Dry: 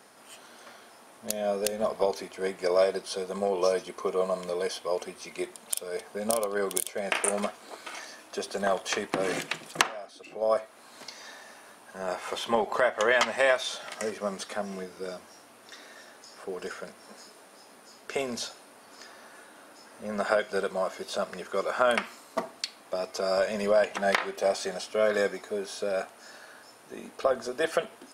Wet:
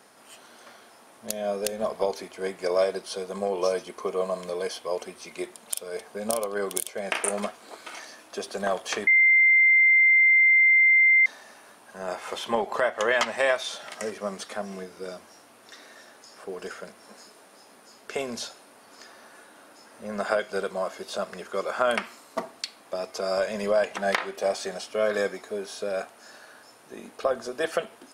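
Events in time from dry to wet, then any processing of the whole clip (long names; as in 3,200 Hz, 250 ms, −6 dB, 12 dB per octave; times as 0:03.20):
0:09.07–0:11.26: beep over 2,090 Hz −14.5 dBFS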